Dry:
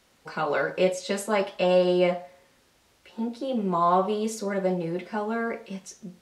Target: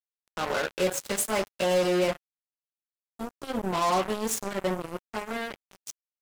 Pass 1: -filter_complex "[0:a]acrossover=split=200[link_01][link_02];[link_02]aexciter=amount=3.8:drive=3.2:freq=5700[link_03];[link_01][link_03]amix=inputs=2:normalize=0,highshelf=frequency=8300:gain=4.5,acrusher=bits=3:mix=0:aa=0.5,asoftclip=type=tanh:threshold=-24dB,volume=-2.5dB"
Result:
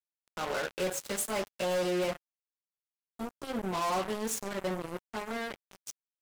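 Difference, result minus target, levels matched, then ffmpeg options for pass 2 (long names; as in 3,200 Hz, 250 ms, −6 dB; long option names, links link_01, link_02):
soft clipping: distortion +12 dB
-filter_complex "[0:a]acrossover=split=200[link_01][link_02];[link_02]aexciter=amount=3.8:drive=3.2:freq=5700[link_03];[link_01][link_03]amix=inputs=2:normalize=0,highshelf=frequency=8300:gain=4.5,acrusher=bits=3:mix=0:aa=0.5,asoftclip=type=tanh:threshold=-12.5dB,volume=-2.5dB"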